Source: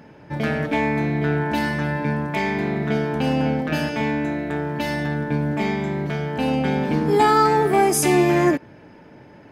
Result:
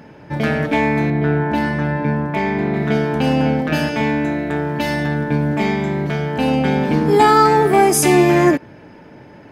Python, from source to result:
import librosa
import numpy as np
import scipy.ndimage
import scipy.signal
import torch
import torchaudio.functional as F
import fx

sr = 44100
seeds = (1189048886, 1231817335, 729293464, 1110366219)

y = fx.high_shelf(x, sr, hz=2900.0, db=-11.0, at=(1.1, 2.74))
y = y * 10.0 ** (4.5 / 20.0)